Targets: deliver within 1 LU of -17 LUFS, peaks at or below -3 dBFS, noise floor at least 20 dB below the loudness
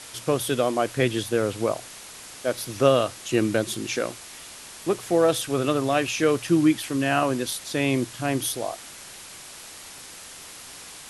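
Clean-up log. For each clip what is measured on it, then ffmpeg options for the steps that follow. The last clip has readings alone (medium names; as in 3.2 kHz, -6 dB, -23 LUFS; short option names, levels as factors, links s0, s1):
noise floor -43 dBFS; noise floor target -45 dBFS; loudness -24.5 LUFS; peak level -5.5 dBFS; loudness target -17.0 LUFS
-> -af "afftdn=nr=6:nf=-43"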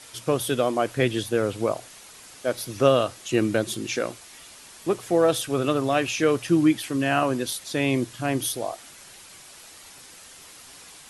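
noise floor -47 dBFS; loudness -24.5 LUFS; peak level -5.5 dBFS; loudness target -17.0 LUFS
-> -af "volume=2.37,alimiter=limit=0.708:level=0:latency=1"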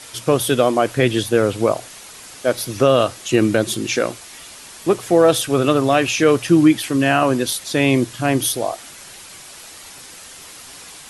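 loudness -17.5 LUFS; peak level -3.0 dBFS; noise floor -39 dBFS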